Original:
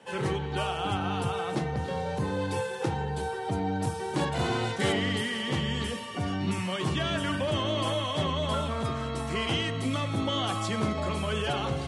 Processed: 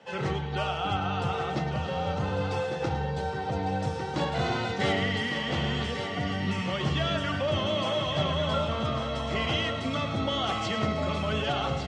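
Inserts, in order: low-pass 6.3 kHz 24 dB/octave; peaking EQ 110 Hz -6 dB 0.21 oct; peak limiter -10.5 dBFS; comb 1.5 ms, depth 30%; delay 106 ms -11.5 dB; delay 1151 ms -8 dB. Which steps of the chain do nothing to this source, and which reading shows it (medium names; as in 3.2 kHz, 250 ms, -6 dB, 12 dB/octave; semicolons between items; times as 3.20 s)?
peak limiter -10.5 dBFS: peak at its input -14.5 dBFS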